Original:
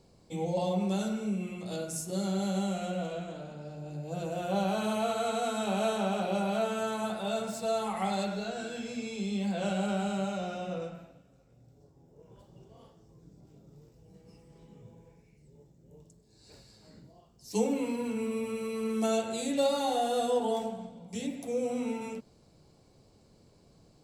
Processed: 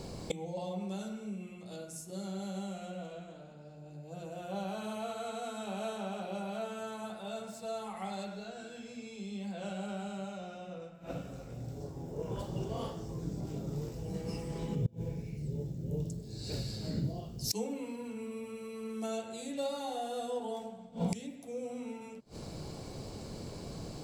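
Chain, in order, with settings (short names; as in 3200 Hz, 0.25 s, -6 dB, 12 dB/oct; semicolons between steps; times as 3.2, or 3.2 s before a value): 14.75–17.51 graphic EQ 125/1000/2000/8000 Hz +6/-10/-5/-6 dB; flipped gate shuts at -37 dBFS, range -26 dB; gain +17.5 dB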